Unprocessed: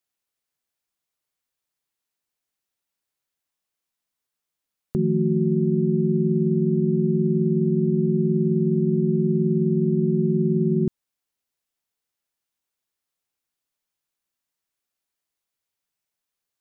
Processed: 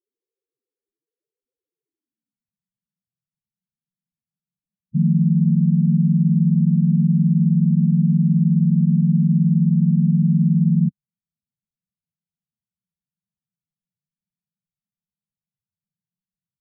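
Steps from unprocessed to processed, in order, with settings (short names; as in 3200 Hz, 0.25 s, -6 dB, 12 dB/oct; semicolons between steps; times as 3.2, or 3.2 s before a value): limiter -19 dBFS, peak gain reduction 7.5 dB; low-pass sweep 440 Hz -> 180 Hz, 1.82–2.5; loudest bins only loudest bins 4; gain +5.5 dB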